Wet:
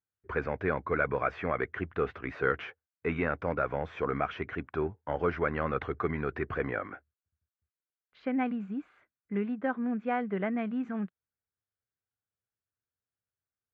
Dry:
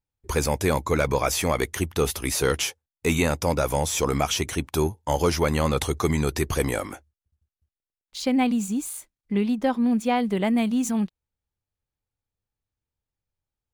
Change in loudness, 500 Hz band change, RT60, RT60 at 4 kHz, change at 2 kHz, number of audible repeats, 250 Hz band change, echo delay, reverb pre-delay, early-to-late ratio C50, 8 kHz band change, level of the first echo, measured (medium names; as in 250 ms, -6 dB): -8.0 dB, -7.0 dB, no reverb, no reverb, -3.5 dB, no echo, -9.5 dB, no echo, no reverb, no reverb, under -40 dB, no echo